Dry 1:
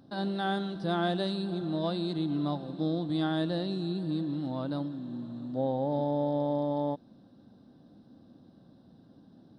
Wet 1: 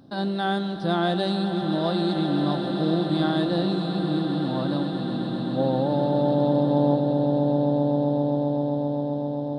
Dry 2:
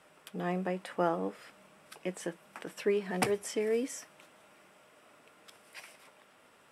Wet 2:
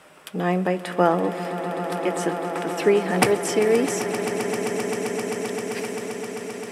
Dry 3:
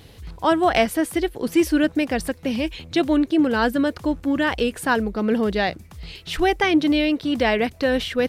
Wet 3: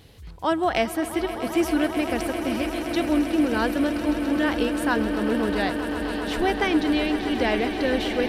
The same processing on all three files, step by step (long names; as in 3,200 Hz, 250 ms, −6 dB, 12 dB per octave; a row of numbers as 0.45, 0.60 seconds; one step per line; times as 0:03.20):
echo that builds up and dies away 131 ms, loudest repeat 8, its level −13.5 dB
loudness normalisation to −24 LKFS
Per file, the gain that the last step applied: +5.5, +11.0, −4.5 decibels